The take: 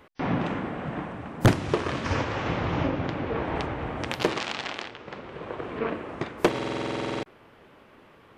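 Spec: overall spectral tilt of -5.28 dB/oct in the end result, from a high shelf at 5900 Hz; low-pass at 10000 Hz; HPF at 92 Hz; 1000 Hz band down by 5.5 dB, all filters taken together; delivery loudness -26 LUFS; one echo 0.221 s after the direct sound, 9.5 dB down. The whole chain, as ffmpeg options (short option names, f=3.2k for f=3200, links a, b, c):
-af "highpass=92,lowpass=10k,equalizer=f=1k:t=o:g=-7,highshelf=f=5.9k:g=-6.5,aecho=1:1:221:0.335,volume=4.5dB"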